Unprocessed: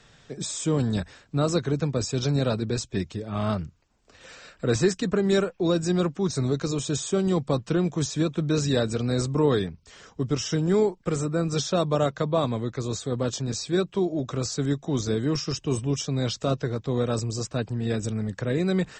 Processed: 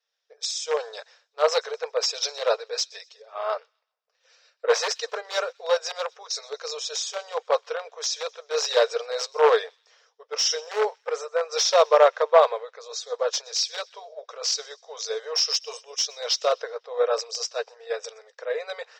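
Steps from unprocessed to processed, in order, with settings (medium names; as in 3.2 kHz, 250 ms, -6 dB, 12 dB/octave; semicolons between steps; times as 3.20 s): peaking EQ 5.5 kHz +14 dB 0.71 oct; in parallel at -5 dB: integer overflow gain 14 dB; on the sum: brick-wall FIR high-pass 430 Hz; distance through air 170 m; feedback echo behind a high-pass 127 ms, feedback 61%, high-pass 3 kHz, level -19.5 dB; three bands expanded up and down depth 100%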